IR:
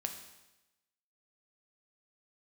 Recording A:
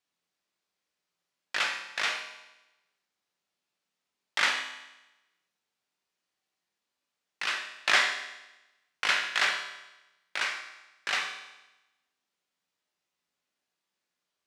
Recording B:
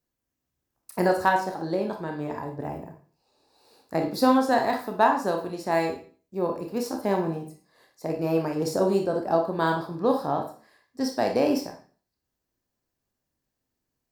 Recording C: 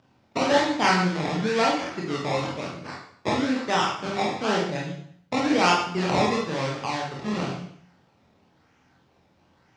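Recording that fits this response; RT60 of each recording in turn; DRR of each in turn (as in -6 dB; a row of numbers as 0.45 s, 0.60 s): A; 1.0 s, 0.40 s, 0.60 s; 4.0 dB, 2.5 dB, -3.5 dB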